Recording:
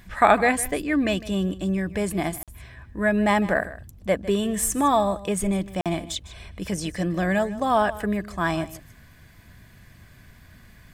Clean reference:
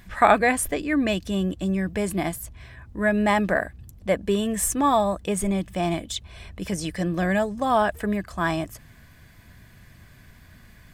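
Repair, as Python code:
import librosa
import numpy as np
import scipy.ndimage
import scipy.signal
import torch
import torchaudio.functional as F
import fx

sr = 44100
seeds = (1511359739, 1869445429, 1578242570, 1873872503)

y = fx.fix_interpolate(x, sr, at_s=(2.43, 5.81), length_ms=47.0)
y = fx.fix_echo_inverse(y, sr, delay_ms=154, level_db=-17.0)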